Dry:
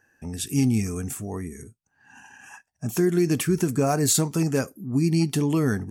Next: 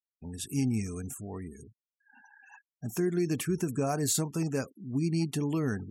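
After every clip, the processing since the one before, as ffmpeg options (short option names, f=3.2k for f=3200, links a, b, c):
-af "afftfilt=real='re*gte(hypot(re,im),0.01)':imag='im*gte(hypot(re,im),0.01)':win_size=1024:overlap=0.75,volume=-7.5dB"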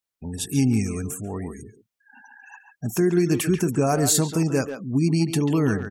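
-filter_complex "[0:a]asplit=2[a][b];[b]adelay=140,highpass=300,lowpass=3.4k,asoftclip=type=hard:threshold=-25.5dB,volume=-7dB[c];[a][c]amix=inputs=2:normalize=0,volume=8.5dB"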